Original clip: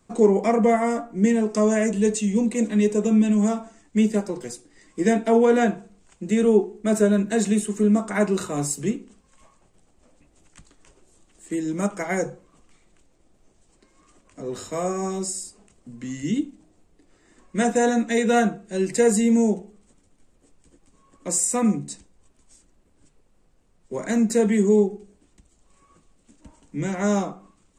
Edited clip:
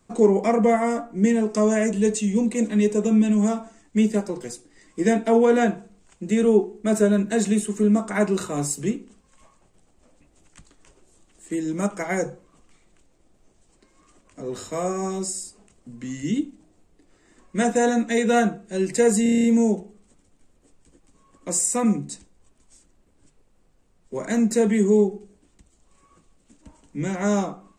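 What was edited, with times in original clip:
19.23 s: stutter 0.03 s, 8 plays

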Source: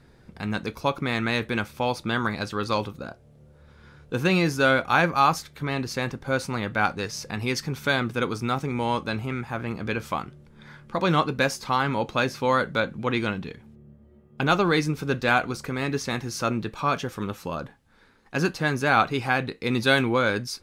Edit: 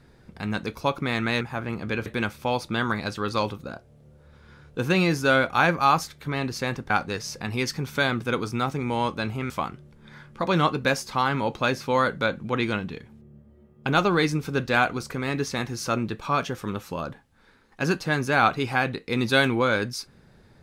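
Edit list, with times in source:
6.25–6.79 s: delete
9.39–10.04 s: move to 1.41 s

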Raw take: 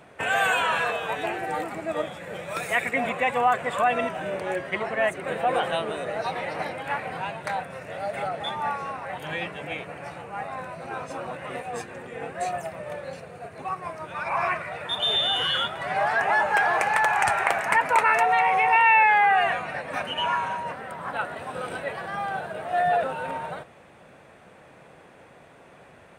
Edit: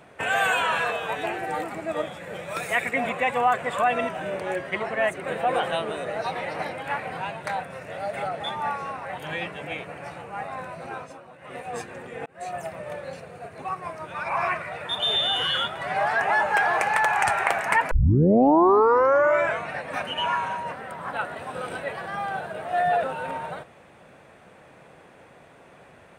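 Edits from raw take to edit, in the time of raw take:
10.87–11.71 s: dip -13 dB, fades 0.34 s
12.26–12.64 s: fade in linear
17.91 s: tape start 1.80 s

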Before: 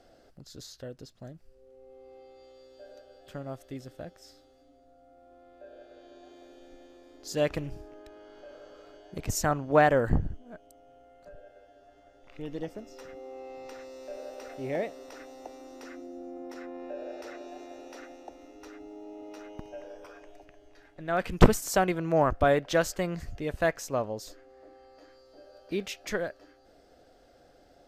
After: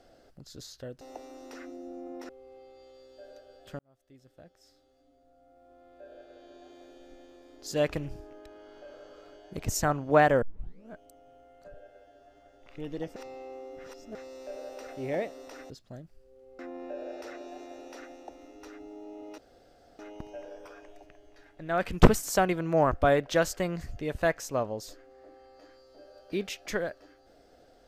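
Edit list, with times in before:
1.01–1.90 s: swap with 15.31–16.59 s
3.40–5.73 s: fade in
10.03 s: tape start 0.48 s
12.77–13.76 s: reverse
19.38 s: insert room tone 0.61 s

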